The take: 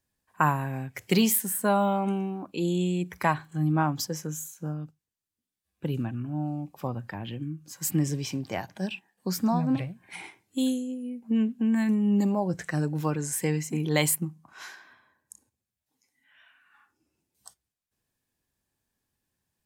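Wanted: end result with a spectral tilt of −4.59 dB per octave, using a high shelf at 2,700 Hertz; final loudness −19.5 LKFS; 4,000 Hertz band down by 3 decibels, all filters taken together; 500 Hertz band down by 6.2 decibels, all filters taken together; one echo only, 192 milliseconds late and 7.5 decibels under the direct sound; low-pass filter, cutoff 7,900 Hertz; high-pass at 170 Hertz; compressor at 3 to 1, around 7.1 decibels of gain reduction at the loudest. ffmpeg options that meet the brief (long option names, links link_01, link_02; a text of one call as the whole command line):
ffmpeg -i in.wav -af "highpass=170,lowpass=7900,equalizer=frequency=500:width_type=o:gain=-8.5,highshelf=frequency=2700:gain=5.5,equalizer=frequency=4000:width_type=o:gain=-9,acompressor=threshold=-30dB:ratio=3,aecho=1:1:192:0.422,volume=15dB" out.wav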